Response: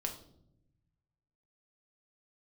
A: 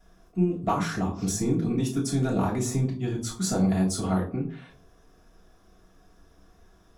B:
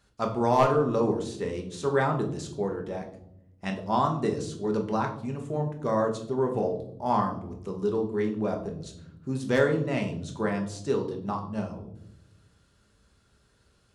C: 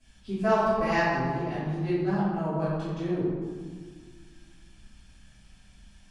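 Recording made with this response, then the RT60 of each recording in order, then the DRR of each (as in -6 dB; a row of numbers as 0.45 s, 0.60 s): B; 0.45 s, 0.75 s, 1.7 s; -5.0 dB, 2.0 dB, -17.0 dB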